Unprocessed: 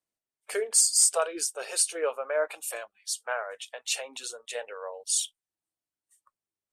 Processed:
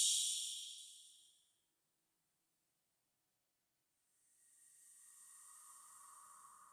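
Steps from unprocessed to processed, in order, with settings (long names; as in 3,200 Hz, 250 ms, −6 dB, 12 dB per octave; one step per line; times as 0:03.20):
sub-octave generator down 1 octave, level +2 dB
low-shelf EQ 170 Hz −4.5 dB
mains-hum notches 50/100 Hz
extreme stretch with random phases 7×, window 0.50 s, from 0:05.34
on a send: echo through a band-pass that steps 156 ms, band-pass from 220 Hz, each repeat 1.4 octaves, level −9.5 dB
on the sum: level +6 dB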